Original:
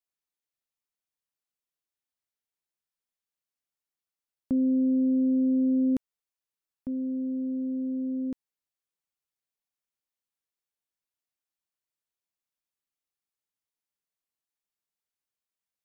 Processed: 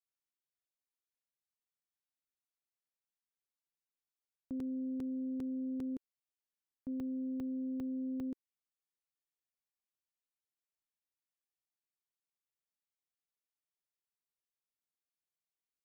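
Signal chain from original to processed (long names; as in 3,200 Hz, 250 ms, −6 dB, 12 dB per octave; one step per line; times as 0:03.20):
dynamic equaliser 350 Hz, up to +6 dB, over −39 dBFS, Q 1.4
brickwall limiter −25.5 dBFS, peak gain reduction 9.5 dB
regular buffer underruns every 0.40 s, samples 128, zero, from 0:00.60
level −8.5 dB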